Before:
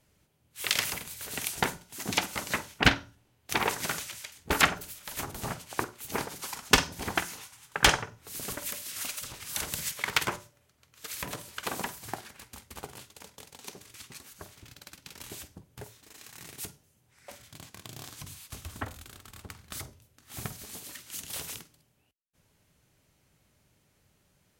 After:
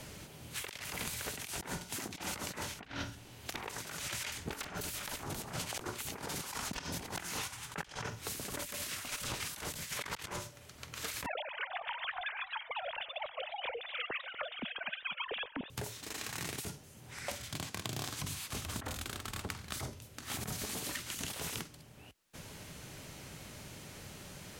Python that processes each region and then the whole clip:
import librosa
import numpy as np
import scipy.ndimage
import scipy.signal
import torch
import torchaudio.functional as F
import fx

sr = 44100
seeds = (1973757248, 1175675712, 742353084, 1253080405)

y = fx.chain(x, sr, fx.overflow_wrap(gain_db=11.5),
    fx.over_compress(threshold_db=-31.0, ratio=-0.5), at=(2.93, 7.48))
y = fx.chain(y, sr, fx.sine_speech(),
    fx.over_compress(threshold_db=-45.0, ratio=-1.0),
    fx.echo_warbled(ms=244, feedback_pct=54, rate_hz=2.8, cents=196, wet_db=-16.5), at=(11.26, 15.7))
y = fx.over_compress(y, sr, threshold_db=-43.0, ratio=-1.0)
y = fx.high_shelf(y, sr, hz=12000.0, db=-8.5)
y = fx.band_squash(y, sr, depth_pct=70)
y = y * librosa.db_to_amplitude(1.0)